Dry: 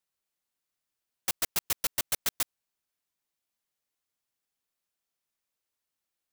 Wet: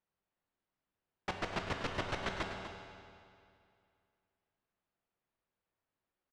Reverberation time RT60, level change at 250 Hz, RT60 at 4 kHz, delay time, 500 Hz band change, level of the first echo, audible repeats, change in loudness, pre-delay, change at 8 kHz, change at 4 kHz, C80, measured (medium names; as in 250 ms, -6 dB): 2.4 s, +6.5 dB, 2.1 s, 246 ms, +5.5 dB, -10.5 dB, 1, -9.0 dB, 11 ms, -23.0 dB, -8.0 dB, 4.0 dB